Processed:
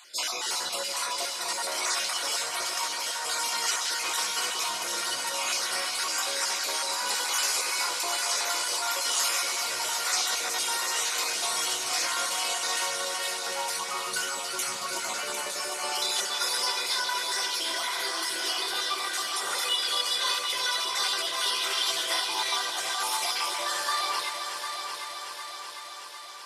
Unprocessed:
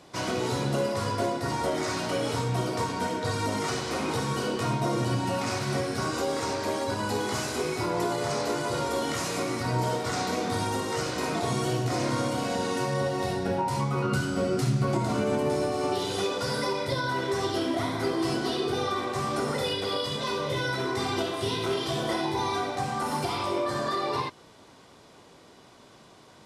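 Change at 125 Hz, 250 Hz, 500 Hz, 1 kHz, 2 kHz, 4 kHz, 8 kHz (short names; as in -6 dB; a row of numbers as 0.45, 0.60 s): under -30 dB, -20.0 dB, -11.0 dB, -1.5 dB, +3.5 dB, +8.0 dB, +11.0 dB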